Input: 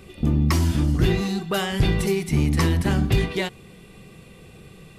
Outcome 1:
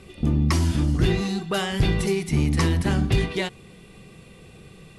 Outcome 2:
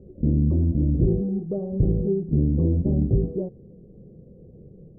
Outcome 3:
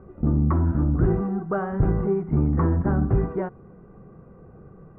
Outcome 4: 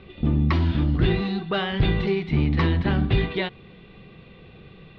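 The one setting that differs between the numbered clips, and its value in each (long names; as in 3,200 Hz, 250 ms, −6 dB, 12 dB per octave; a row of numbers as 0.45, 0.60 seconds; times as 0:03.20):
elliptic low-pass filter, frequency: 11,000, 550, 1,400, 3,900 Hertz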